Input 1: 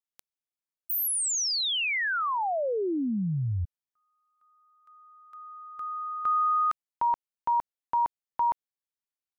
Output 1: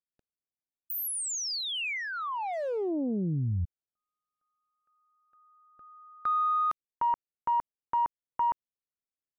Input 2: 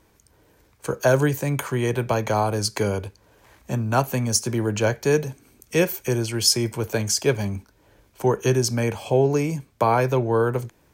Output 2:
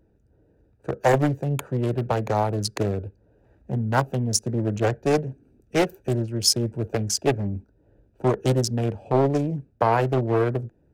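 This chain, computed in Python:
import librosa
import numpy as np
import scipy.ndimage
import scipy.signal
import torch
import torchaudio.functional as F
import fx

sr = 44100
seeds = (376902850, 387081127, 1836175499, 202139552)

y = fx.wiener(x, sr, points=41)
y = fx.doppler_dist(y, sr, depth_ms=0.61)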